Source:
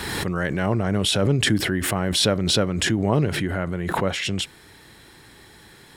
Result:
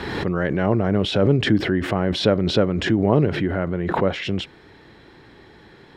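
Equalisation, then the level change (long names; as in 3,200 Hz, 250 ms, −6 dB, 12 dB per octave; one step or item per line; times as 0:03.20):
high-frequency loss of the air 230 metres
parametric band 400 Hz +5.5 dB 2.1 octaves
high-shelf EQ 7,500 Hz +8.5 dB
0.0 dB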